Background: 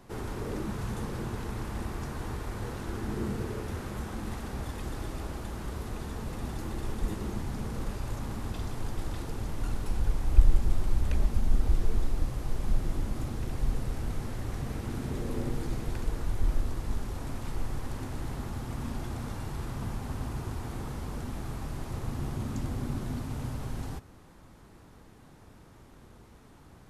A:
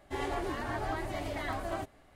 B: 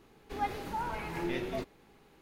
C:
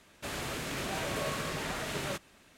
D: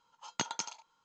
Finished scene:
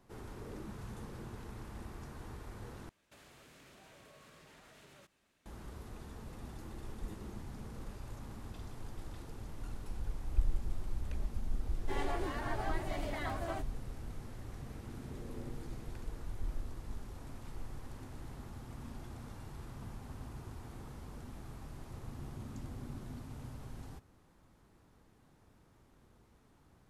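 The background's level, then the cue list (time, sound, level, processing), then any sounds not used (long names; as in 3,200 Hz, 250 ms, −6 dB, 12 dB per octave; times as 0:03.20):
background −11.5 dB
0:02.89: overwrite with C −15.5 dB + downward compressor, threshold −40 dBFS
0:11.77: mix in A −3.5 dB
not used: B, D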